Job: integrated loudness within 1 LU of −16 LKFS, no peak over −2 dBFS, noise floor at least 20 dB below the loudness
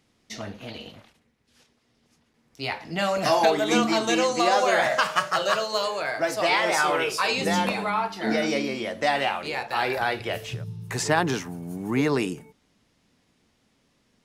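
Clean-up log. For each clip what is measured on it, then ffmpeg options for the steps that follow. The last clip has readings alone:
integrated loudness −24.5 LKFS; sample peak −6.5 dBFS; target loudness −16.0 LKFS
→ -af "volume=8.5dB,alimiter=limit=-2dB:level=0:latency=1"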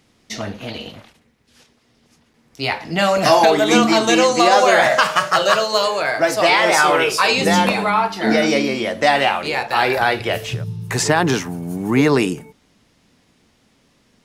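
integrated loudness −16.0 LKFS; sample peak −2.0 dBFS; background noise floor −59 dBFS

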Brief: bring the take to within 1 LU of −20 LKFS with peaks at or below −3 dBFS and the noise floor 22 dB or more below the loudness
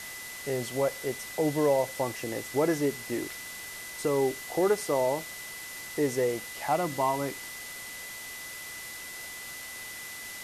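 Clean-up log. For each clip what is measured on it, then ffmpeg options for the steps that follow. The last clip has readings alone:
interfering tone 2,000 Hz; level of the tone −42 dBFS; background noise floor −41 dBFS; target noise floor −53 dBFS; integrated loudness −31.0 LKFS; sample peak −14.5 dBFS; target loudness −20.0 LKFS
→ -af "bandreject=frequency=2000:width=30"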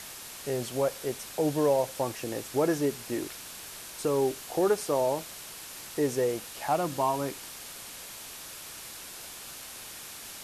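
interfering tone none found; background noise floor −44 dBFS; target noise floor −54 dBFS
→ -af "afftdn=noise_reduction=10:noise_floor=-44"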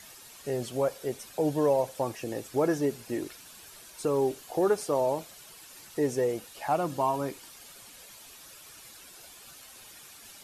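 background noise floor −50 dBFS; target noise floor −52 dBFS
→ -af "afftdn=noise_reduction=6:noise_floor=-50"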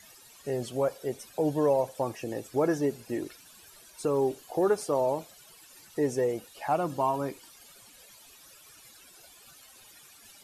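background noise floor −55 dBFS; integrated loudness −30.0 LKFS; sample peak −14.5 dBFS; target loudness −20.0 LKFS
→ -af "volume=10dB"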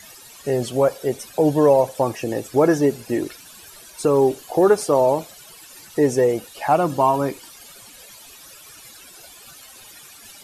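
integrated loudness −20.0 LKFS; sample peak −4.5 dBFS; background noise floor −45 dBFS

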